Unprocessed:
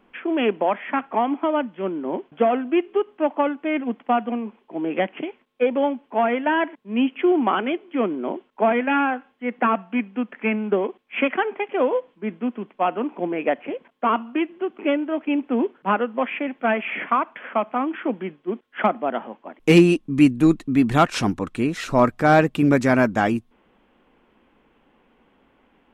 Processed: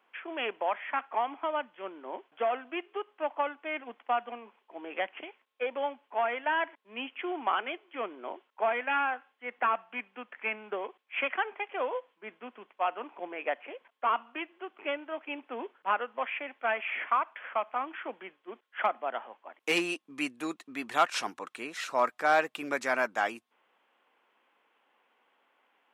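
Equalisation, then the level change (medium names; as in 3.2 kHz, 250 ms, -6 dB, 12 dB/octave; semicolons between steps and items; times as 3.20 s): high-pass 730 Hz 12 dB/octave; -5.5 dB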